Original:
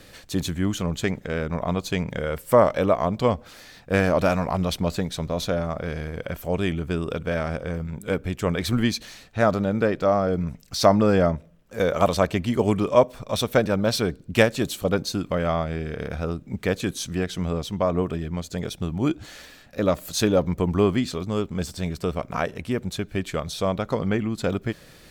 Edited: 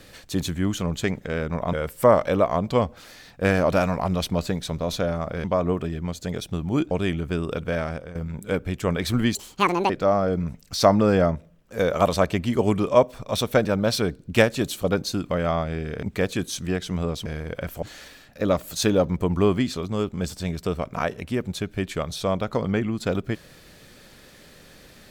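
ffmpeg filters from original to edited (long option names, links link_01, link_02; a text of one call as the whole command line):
ffmpeg -i in.wav -filter_complex "[0:a]asplit=10[link_01][link_02][link_03][link_04][link_05][link_06][link_07][link_08][link_09][link_10];[link_01]atrim=end=1.732[link_11];[link_02]atrim=start=2.218:end=5.932[link_12];[link_03]atrim=start=17.728:end=19.202[link_13];[link_04]atrim=start=6.498:end=7.74,asetpts=PTS-STARTPTS,afade=type=out:start_time=0.762:duration=0.48:curve=qsin:silence=0.211349[link_14];[link_05]atrim=start=7.74:end=8.944,asetpts=PTS-STARTPTS,afade=type=in:duration=0.004:curve=hsin:silence=0.211349[link_15];[link_06]atrim=start=8.94:end=9.9,asetpts=PTS-STARTPTS,asetrate=77616,aresample=44100[link_16];[link_07]atrim=start=9.896:end=16.032[link_17];[link_08]atrim=start=16.498:end=17.732[link_18];[link_09]atrim=start=5.928:end=6.502[link_19];[link_10]atrim=start=19.198[link_20];[link_11][link_12]acrossfade=duration=0.004:curve1=hsin:curve2=hsin[link_21];[link_21][link_13]acrossfade=duration=0.004:curve1=hsin:curve2=hsin[link_22];[link_14][link_15]concat=n=2:v=0:a=1[link_23];[link_22][link_23]acrossfade=duration=0.004:curve1=hsin:curve2=hsin[link_24];[link_24][link_16]acrossfade=duration=0.004:curve1=hsin:curve2=hsin[link_25];[link_25][link_17]acrossfade=duration=0.004:curve1=hsin:curve2=hsin[link_26];[link_26][link_18]acrossfade=duration=0.004:curve1=hsin:curve2=hsin[link_27];[link_27][link_19]acrossfade=duration=0.004:curve1=hsin:curve2=hsin[link_28];[link_28][link_20]acrossfade=duration=0.004:curve1=hsin:curve2=hsin" out.wav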